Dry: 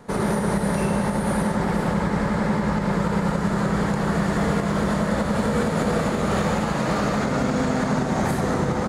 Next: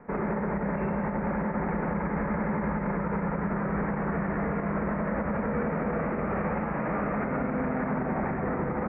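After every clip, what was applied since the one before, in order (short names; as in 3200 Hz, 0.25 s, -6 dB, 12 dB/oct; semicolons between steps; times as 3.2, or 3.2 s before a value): limiter -16.5 dBFS, peak gain reduction 5 dB; steep low-pass 2400 Hz 72 dB/oct; bell 110 Hz -11.5 dB 0.34 oct; gain -3.5 dB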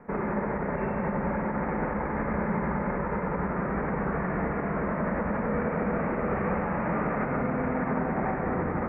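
reverb RT60 1.1 s, pre-delay 62 ms, DRR 4.5 dB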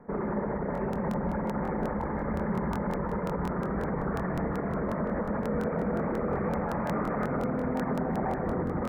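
formant sharpening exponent 1.5; crackling interface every 0.18 s, samples 1024, repeat, from 0.73; gain -1.5 dB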